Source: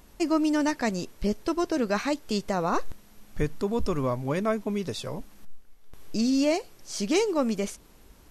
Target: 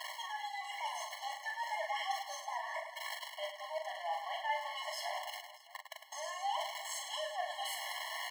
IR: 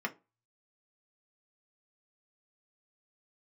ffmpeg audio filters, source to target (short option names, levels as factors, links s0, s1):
-filter_complex "[0:a]aeval=exprs='val(0)+0.5*0.0447*sgn(val(0))':c=same,highpass=85,acrossover=split=590 3400:gain=0.0794 1 0.178[s0][s1][s2];[s0][s1][s2]amix=inputs=3:normalize=0,alimiter=limit=0.0794:level=0:latency=1:release=351,areverse,acompressor=threshold=0.00891:ratio=10,areverse,aeval=exprs='0.0316*(cos(1*acos(clip(val(0)/0.0316,-1,1)))-cos(1*PI/2))+0.000355*(cos(2*acos(clip(val(0)/0.0316,-1,1)))-cos(2*PI/2))+0.000501*(cos(6*acos(clip(val(0)/0.0316,-1,1)))-cos(6*PI/2))':c=same,asetrate=58866,aresample=44100,atempo=0.749154,flanger=delay=1.5:depth=7.4:regen=52:speed=0.32:shape=triangular,aecho=1:1:40|104|206.4|370.2|632.4:0.631|0.398|0.251|0.158|0.1,afftfilt=real='re*eq(mod(floor(b*sr/1024/560),2),1)':imag='im*eq(mod(floor(b*sr/1024/560),2),1)':win_size=1024:overlap=0.75,volume=3.16"